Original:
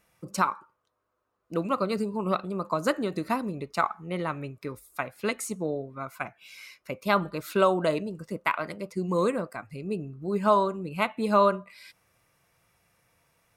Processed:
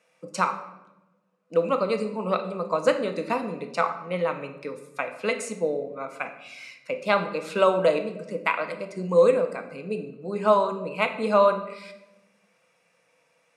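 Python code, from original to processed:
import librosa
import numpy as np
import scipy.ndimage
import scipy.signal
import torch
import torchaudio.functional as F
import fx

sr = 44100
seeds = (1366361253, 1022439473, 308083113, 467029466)

y = fx.cabinet(x, sr, low_hz=190.0, low_slope=24, high_hz=9300.0, hz=(340.0, 510.0, 2500.0), db=(-8, 10, 6))
y = fx.room_shoebox(y, sr, seeds[0], volume_m3=380.0, walls='mixed', distance_m=0.58)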